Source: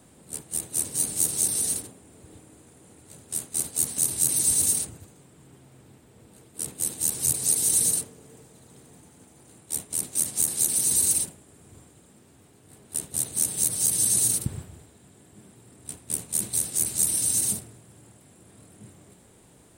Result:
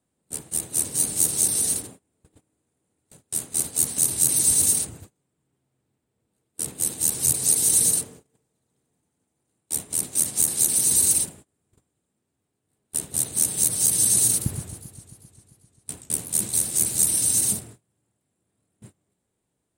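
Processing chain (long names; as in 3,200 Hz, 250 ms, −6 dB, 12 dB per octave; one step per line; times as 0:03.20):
noise gate −45 dBFS, range −26 dB
0:14.29–0:16.98: feedback echo with a swinging delay time 132 ms, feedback 74%, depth 200 cents, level −13.5 dB
level +3 dB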